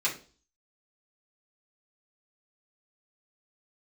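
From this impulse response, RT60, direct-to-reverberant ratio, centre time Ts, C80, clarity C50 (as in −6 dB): 0.40 s, −6.5 dB, 19 ms, 17.0 dB, 10.5 dB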